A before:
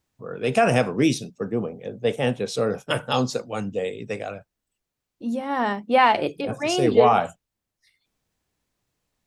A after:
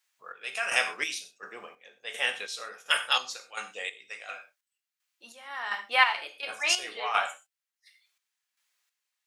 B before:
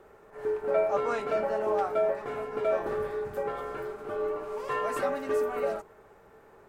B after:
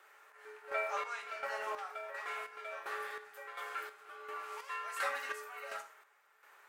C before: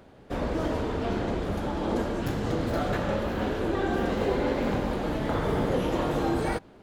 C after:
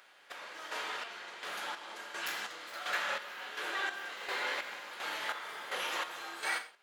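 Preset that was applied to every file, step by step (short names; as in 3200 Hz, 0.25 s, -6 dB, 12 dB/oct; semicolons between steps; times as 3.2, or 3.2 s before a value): Chebyshev high-pass 1700 Hz, order 2; non-linear reverb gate 0.15 s falling, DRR 5 dB; chopper 1.4 Hz, depth 60%, duty 45%; gain +3.5 dB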